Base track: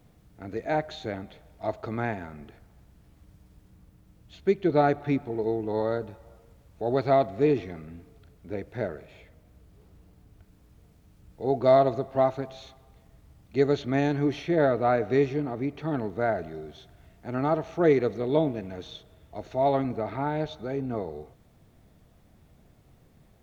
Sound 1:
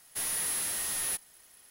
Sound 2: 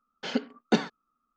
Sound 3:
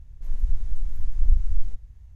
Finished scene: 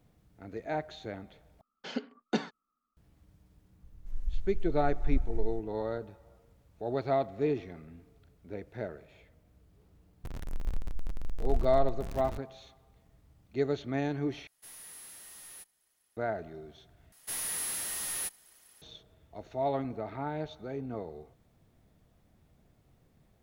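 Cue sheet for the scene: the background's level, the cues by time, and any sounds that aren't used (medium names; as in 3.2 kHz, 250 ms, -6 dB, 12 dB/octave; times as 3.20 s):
base track -7 dB
1.61 s: replace with 2 -7 dB
3.84 s: add 3 -9.5 dB
10.24 s: add 3 -12 dB + jump at every zero crossing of -20.5 dBFS
14.47 s: replace with 1 -17 dB
17.12 s: replace with 1 -3 dB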